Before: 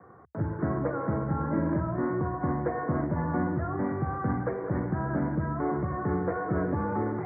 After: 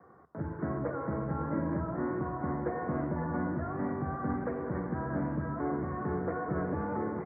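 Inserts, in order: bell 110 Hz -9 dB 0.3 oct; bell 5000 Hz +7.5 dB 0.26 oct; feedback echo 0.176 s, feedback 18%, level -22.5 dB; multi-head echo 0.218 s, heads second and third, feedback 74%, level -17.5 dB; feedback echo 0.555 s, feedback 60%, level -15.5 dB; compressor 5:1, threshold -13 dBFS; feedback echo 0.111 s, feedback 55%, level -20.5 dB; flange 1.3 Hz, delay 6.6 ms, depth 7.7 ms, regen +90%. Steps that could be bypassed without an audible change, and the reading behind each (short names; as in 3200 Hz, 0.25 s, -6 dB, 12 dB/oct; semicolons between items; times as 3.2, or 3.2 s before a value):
bell 5000 Hz: input band ends at 1900 Hz; compressor, threshold -13 dBFS: input peak -15.5 dBFS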